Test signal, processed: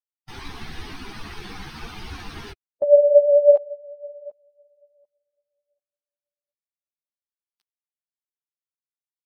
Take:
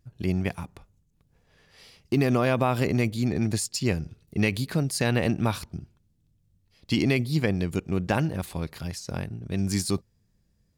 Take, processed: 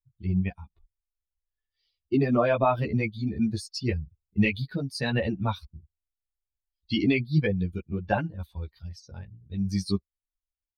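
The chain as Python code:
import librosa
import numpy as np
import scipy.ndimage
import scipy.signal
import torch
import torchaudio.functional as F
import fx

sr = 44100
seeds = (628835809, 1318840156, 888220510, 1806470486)

y = fx.bin_expand(x, sr, power=2.0)
y = fx.dynamic_eq(y, sr, hz=620.0, q=4.9, threshold_db=-37.0, ratio=4.0, max_db=6)
y = scipy.signal.savgol_filter(y, 15, 4, mode='constant')
y = fx.ensemble(y, sr)
y = y * 10.0 ** (6.5 / 20.0)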